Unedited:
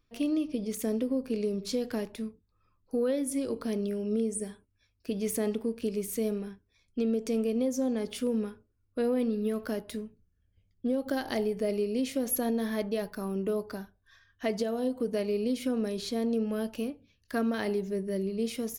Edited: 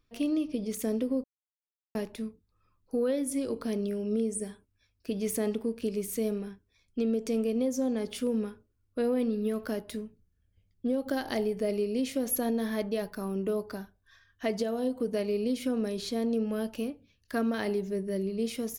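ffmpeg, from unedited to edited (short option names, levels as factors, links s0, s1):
-filter_complex "[0:a]asplit=3[s0][s1][s2];[s0]atrim=end=1.24,asetpts=PTS-STARTPTS,afade=t=out:st=1.236:d=0.004:c=hsin[s3];[s1]atrim=start=1.24:end=1.95,asetpts=PTS-STARTPTS,volume=0[s4];[s2]atrim=start=1.95,asetpts=PTS-STARTPTS,afade=t=in:d=0.004:c=hsin[s5];[s3][s4][s5]concat=n=3:v=0:a=1"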